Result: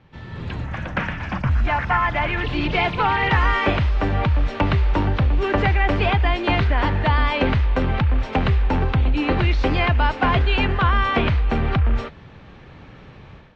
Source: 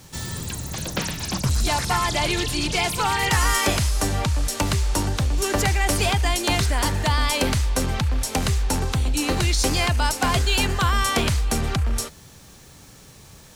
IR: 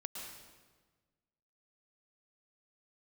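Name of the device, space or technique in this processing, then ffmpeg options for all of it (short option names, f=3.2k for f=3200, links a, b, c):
action camera in a waterproof case: -filter_complex "[0:a]asettb=1/sr,asplit=3[a][b][c];[a]atrim=end=0.644[d];[b]atrim=start=0.64:end=2.44,asetpts=PTS-STARTPTS,afade=t=in:d=0.004:c=qsin,afade=t=out:st=1.796:d=0.004:c=qsin,equalizer=f=160:t=o:w=0.67:g=-4,equalizer=f=400:t=o:w=0.67:g=-10,equalizer=f=1.6k:t=o:w=0.67:g=5,equalizer=f=4k:t=o:w=0.67:g=-11[e];[c]atrim=start=2.436[f];[d][e]acrossfade=d=0.004:c1=hsin:c2=qsin[g];[g][f]acrossfade=d=0.004:c1=qsin:c2=hsin,lowpass=f=2.8k:w=0.5412,lowpass=f=2.8k:w=1.3066,dynaudnorm=f=290:g=3:m=12dB,volume=-6dB" -ar 32000 -c:a aac -b:a 48k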